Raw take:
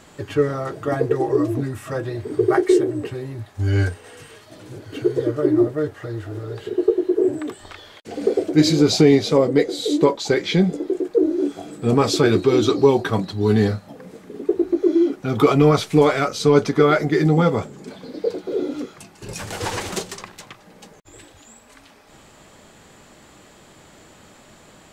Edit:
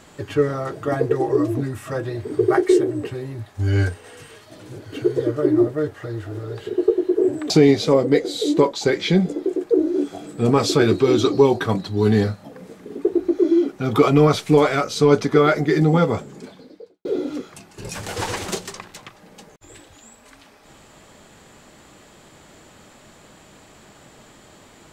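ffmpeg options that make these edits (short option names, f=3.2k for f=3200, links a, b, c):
-filter_complex "[0:a]asplit=3[a][b][c];[a]atrim=end=7.502[d];[b]atrim=start=8.938:end=18.49,asetpts=PTS-STARTPTS,afade=t=out:st=8.882:d=0.67:c=qua[e];[c]atrim=start=18.49,asetpts=PTS-STARTPTS,afade=t=in:d=0.004:c=hsin[f];[e][f]concat=n=2:v=0:a=1[g];[d][g]acrossfade=d=0.004:c1=hsin:c2=hsin"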